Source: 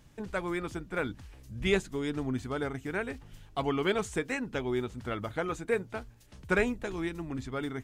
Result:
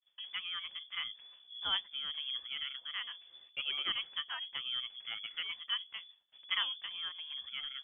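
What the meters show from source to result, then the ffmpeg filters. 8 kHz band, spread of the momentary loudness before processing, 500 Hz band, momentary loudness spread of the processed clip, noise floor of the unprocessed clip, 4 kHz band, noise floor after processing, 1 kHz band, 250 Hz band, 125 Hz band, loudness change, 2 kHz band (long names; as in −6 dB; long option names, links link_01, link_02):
below −30 dB, 11 LU, −33.0 dB, 10 LU, −55 dBFS, +11.0 dB, −65 dBFS, −10.5 dB, −33.5 dB, below −30 dB, −4.5 dB, −7.0 dB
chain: -af "lowpass=frequency=3000:width_type=q:width=0.5098,lowpass=frequency=3000:width_type=q:width=0.6013,lowpass=frequency=3000:width_type=q:width=0.9,lowpass=frequency=3000:width_type=q:width=2.563,afreqshift=-3500,agate=range=-33dB:threshold=-49dB:ratio=3:detection=peak,volume=-7.5dB"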